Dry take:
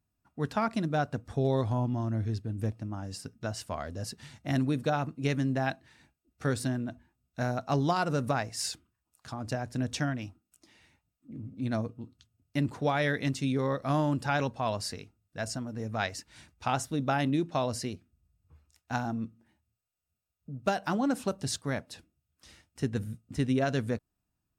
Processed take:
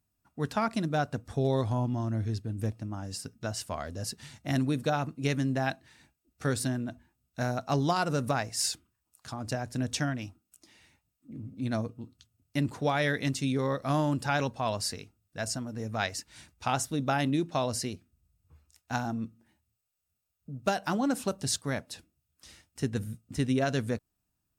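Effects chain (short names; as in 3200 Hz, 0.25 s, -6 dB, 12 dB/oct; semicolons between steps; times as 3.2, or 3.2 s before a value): high shelf 4700 Hz +6.5 dB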